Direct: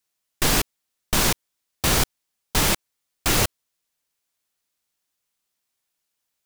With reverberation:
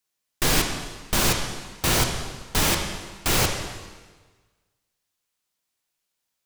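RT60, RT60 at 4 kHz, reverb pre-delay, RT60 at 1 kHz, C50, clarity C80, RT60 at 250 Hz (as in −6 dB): 1.4 s, 1.3 s, 6 ms, 1.4 s, 5.0 dB, 6.5 dB, 1.4 s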